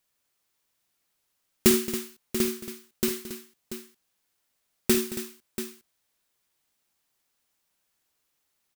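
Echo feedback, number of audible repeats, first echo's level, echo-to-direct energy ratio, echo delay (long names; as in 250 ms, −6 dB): repeats not evenly spaced, 4, −11.0 dB, −5.5 dB, 51 ms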